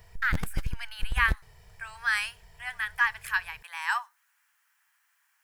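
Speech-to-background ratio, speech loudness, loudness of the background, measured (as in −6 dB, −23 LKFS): 6.5 dB, −30.0 LKFS, −36.5 LKFS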